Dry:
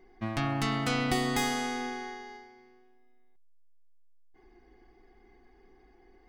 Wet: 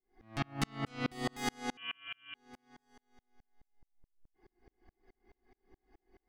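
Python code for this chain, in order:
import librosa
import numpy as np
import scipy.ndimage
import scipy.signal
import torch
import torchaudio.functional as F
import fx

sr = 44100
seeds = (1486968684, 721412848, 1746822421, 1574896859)

y = fx.echo_feedback(x, sr, ms=710, feedback_pct=20, wet_db=-16.5)
y = fx.freq_invert(y, sr, carrier_hz=3200, at=(1.77, 2.35))
y = fx.tremolo_decay(y, sr, direction='swelling', hz=4.7, depth_db=38)
y = y * 10.0 ** (1.0 / 20.0)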